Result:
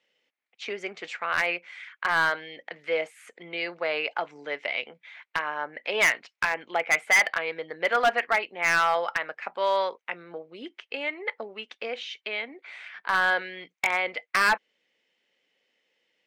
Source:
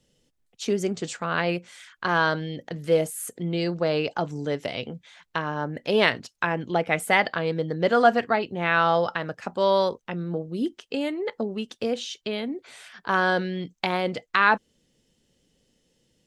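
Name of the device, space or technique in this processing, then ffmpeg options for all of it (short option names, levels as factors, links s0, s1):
megaphone: -af "highpass=690,lowpass=3000,equalizer=f=2200:t=o:w=0.52:g=11,asoftclip=type=hard:threshold=0.168"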